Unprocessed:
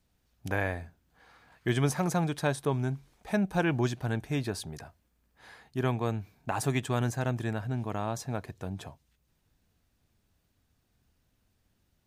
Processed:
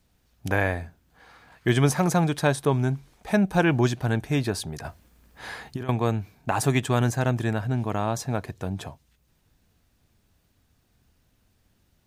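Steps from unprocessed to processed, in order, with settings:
0:04.84–0:05.89: compressor whose output falls as the input rises −38 dBFS, ratio −1
level +6.5 dB

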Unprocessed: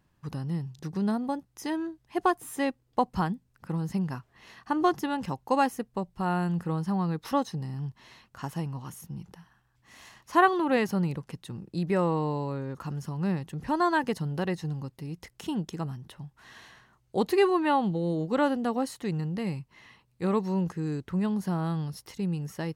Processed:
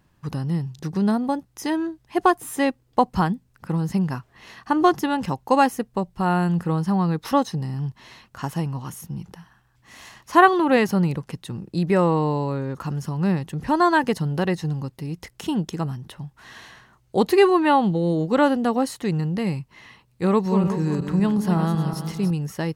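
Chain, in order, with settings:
0:20.27–0:22.31: feedback delay that plays each chunk backwards 185 ms, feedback 54%, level −7 dB
level +7 dB

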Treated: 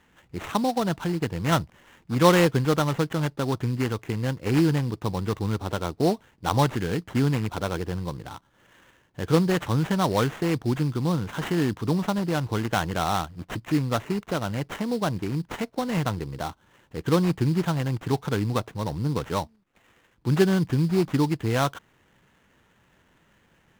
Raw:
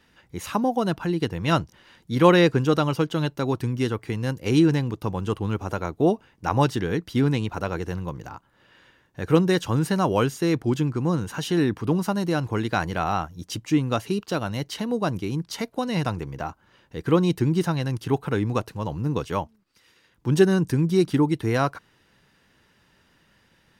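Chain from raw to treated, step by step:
dynamic equaliser 350 Hz, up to −4 dB, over −29 dBFS, Q 1.5
sample-rate reduction 4,800 Hz, jitter 20%
high-shelf EQ 5,700 Hz −7 dB

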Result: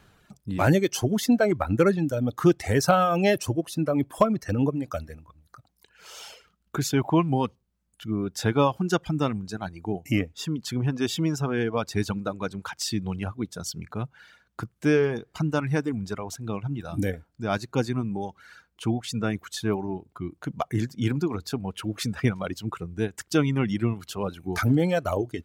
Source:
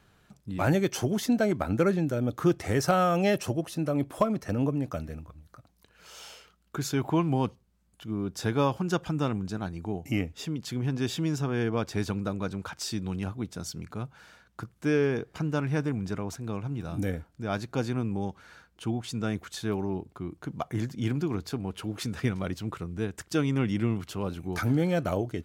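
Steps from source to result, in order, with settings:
reverb reduction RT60 1.8 s
level +5 dB

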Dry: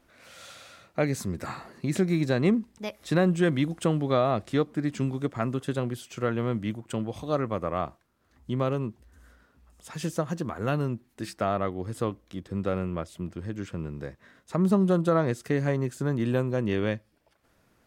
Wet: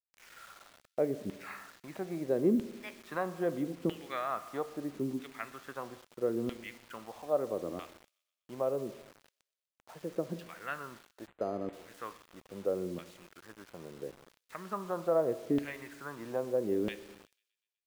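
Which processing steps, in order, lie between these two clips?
auto-filter band-pass saw down 0.77 Hz 270–3,100 Hz
spring reverb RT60 1.3 s, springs 35/59 ms, chirp 45 ms, DRR 13 dB
bit reduction 9 bits
delay with a high-pass on its return 123 ms, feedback 59%, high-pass 3,100 Hz, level −22 dB
0:11.27–0:11.73: linearly interpolated sample-rate reduction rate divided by 8×

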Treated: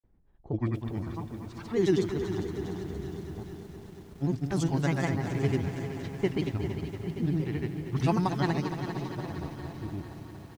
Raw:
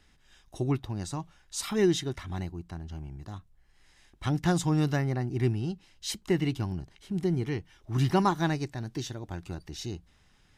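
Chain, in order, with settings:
low-pass that shuts in the quiet parts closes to 540 Hz, open at −21 dBFS
granular cloud, pitch spread up and down by 3 semitones
repeating echo 399 ms, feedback 58%, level −11 dB
feedback echo at a low word length 232 ms, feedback 80%, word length 9 bits, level −10.5 dB

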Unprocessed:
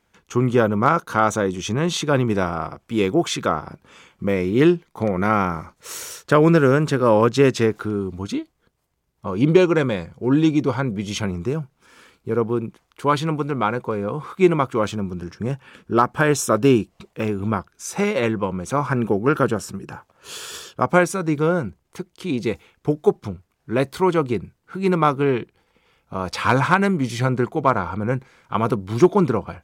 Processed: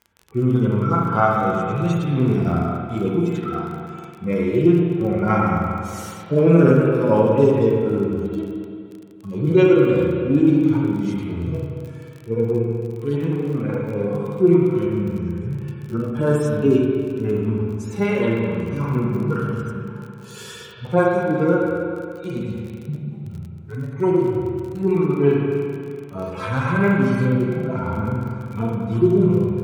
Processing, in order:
harmonic-percussive split with one part muted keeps harmonic
spring reverb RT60 2.3 s, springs 35/47 ms, chirp 70 ms, DRR −2.5 dB
surface crackle 34 per second −31 dBFS
level −1 dB

